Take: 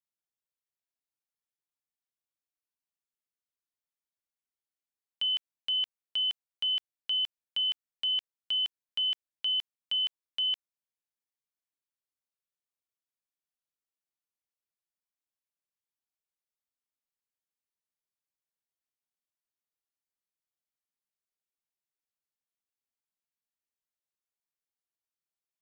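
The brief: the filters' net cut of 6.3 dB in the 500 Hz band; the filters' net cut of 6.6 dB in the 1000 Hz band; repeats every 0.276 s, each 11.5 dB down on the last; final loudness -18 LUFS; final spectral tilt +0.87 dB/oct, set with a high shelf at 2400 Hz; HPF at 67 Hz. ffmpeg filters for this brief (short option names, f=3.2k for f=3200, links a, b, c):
-af "highpass=67,equalizer=f=500:t=o:g=-6,equalizer=f=1k:t=o:g=-6,highshelf=f=2.4k:g=-5.5,aecho=1:1:276|552|828:0.266|0.0718|0.0194,volume=15.5dB"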